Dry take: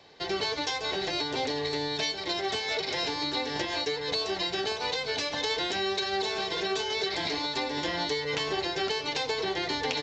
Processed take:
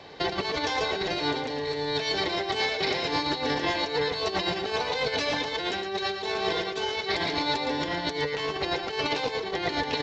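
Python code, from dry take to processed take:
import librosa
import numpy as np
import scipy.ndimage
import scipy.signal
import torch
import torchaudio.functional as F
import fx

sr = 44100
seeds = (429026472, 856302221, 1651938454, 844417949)

y = fx.high_shelf(x, sr, hz=5100.0, db=-11.5)
y = fx.over_compress(y, sr, threshold_db=-35.0, ratio=-0.5)
y = y + 10.0 ** (-7.5 / 20.0) * np.pad(y, (int(114 * sr / 1000.0), 0))[:len(y)]
y = y * 10.0 ** (6.5 / 20.0)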